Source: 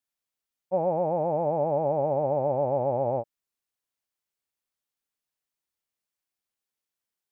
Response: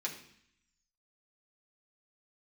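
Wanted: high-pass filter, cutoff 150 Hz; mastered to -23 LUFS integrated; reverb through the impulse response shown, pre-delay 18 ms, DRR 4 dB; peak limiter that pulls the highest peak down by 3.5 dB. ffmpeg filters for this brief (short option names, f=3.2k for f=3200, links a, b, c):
-filter_complex "[0:a]highpass=150,alimiter=limit=-19dB:level=0:latency=1,asplit=2[a][b];[1:a]atrim=start_sample=2205,adelay=18[c];[b][c]afir=irnorm=-1:irlink=0,volume=-6dB[d];[a][d]amix=inputs=2:normalize=0,volume=4.5dB"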